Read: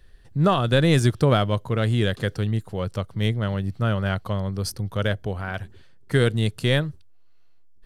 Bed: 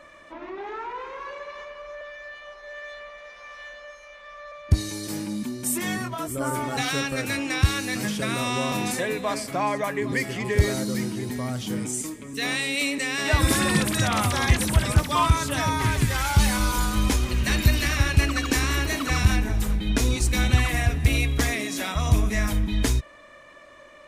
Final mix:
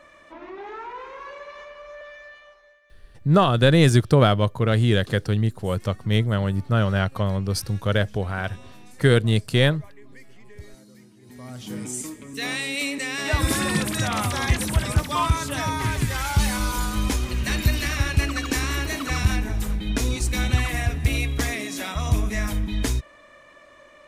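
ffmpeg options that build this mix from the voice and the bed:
-filter_complex "[0:a]adelay=2900,volume=2.5dB[a];[1:a]volume=19.5dB,afade=t=out:st=2.13:d=0.66:silence=0.0891251,afade=t=in:st=11.21:d=0.76:silence=0.0841395[b];[a][b]amix=inputs=2:normalize=0"

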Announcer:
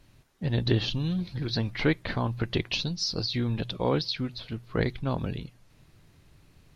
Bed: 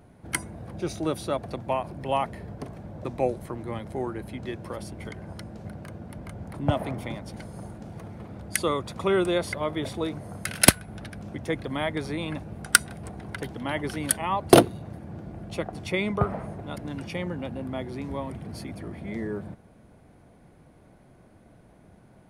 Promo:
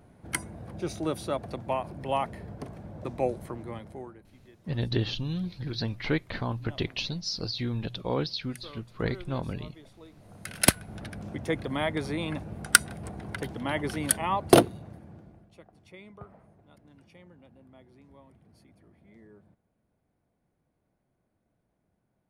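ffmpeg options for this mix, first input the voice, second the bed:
-filter_complex "[0:a]adelay=4250,volume=-3dB[a];[1:a]volume=18.5dB,afade=t=out:st=3.49:d=0.75:silence=0.112202,afade=t=in:st=10.13:d=0.95:silence=0.0891251,afade=t=out:st=14.25:d=1.26:silence=0.0841395[b];[a][b]amix=inputs=2:normalize=0"

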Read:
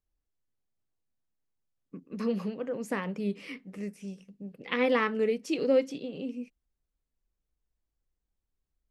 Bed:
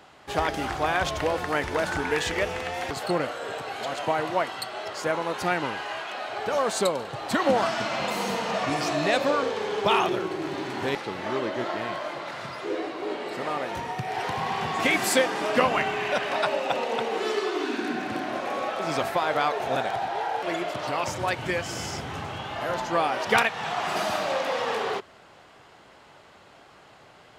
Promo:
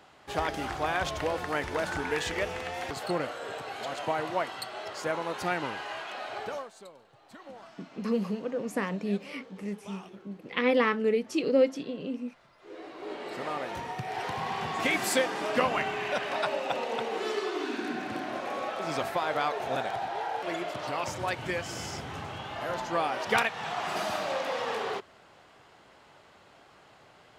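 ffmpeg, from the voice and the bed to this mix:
-filter_complex "[0:a]adelay=5850,volume=1.5dB[a];[1:a]volume=16dB,afade=t=out:st=6.37:d=0.32:silence=0.0944061,afade=t=in:st=12.58:d=0.76:silence=0.0944061[b];[a][b]amix=inputs=2:normalize=0"

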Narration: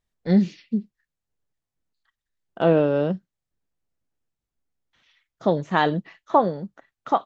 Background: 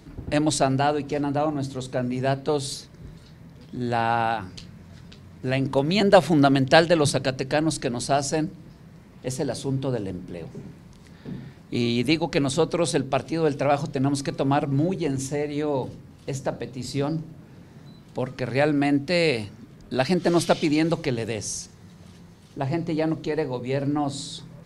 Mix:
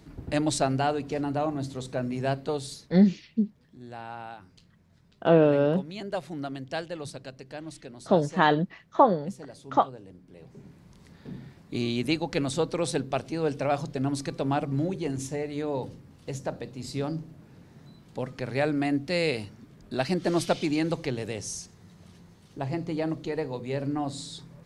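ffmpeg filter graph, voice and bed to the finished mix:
-filter_complex "[0:a]adelay=2650,volume=-1dB[a];[1:a]volume=8dB,afade=t=out:st=2.32:d=0.79:silence=0.223872,afade=t=in:st=10.27:d=0.71:silence=0.251189[b];[a][b]amix=inputs=2:normalize=0"

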